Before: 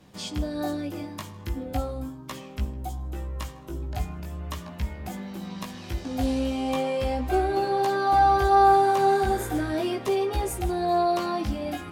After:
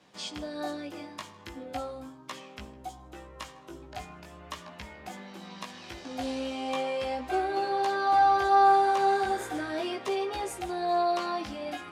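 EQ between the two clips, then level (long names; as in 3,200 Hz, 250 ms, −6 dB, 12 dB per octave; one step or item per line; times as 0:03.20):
high-pass filter 660 Hz 6 dB per octave
high-frequency loss of the air 63 metres
high-shelf EQ 8,800 Hz +4 dB
0.0 dB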